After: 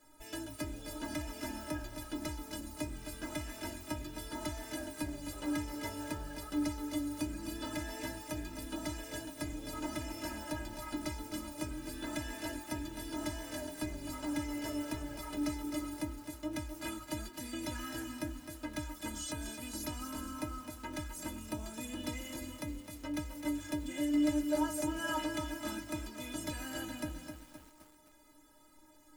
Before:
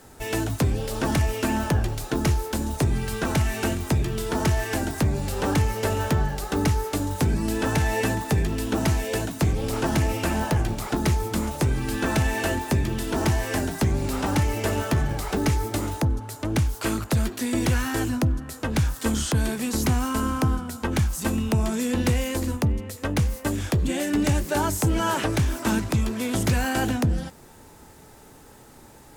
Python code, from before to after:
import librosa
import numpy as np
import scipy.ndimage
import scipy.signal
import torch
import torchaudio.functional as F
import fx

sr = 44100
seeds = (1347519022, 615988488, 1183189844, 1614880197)

y = fx.stiff_resonator(x, sr, f0_hz=300.0, decay_s=0.22, stiffness=0.008)
y = fx.echo_crushed(y, sr, ms=259, feedback_pct=55, bits=9, wet_db=-7.5)